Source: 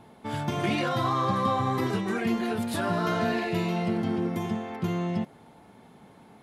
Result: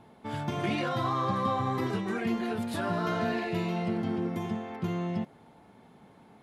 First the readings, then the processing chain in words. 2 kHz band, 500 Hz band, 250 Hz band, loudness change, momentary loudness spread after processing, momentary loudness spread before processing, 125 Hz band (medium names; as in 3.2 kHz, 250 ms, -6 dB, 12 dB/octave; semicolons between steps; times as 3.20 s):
-3.5 dB, -3.0 dB, -3.0 dB, -3.0 dB, 5 LU, 5 LU, -3.0 dB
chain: treble shelf 6.1 kHz -5.5 dB; trim -3 dB